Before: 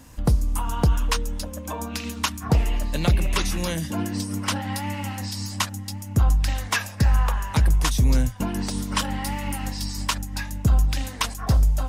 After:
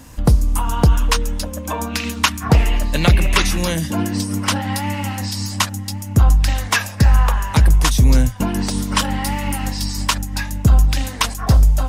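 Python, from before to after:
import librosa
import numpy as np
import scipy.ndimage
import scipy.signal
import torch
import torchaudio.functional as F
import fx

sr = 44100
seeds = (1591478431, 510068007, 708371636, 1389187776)

y = fx.dynamic_eq(x, sr, hz=2000.0, q=0.86, threshold_db=-40.0, ratio=4.0, max_db=5, at=(1.2, 3.51), fade=0.02)
y = y * librosa.db_to_amplitude(6.5)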